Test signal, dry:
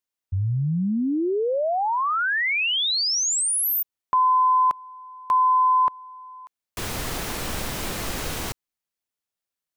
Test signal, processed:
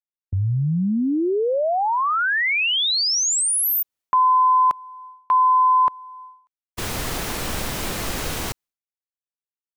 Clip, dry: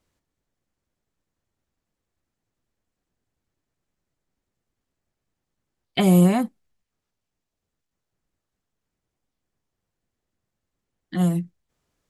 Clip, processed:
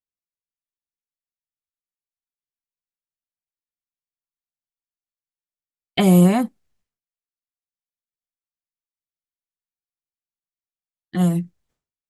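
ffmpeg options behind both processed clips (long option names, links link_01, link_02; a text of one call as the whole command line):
ffmpeg -i in.wav -af "agate=range=-33dB:threshold=-29dB:ratio=3:release=491:detection=rms,volume=2.5dB" out.wav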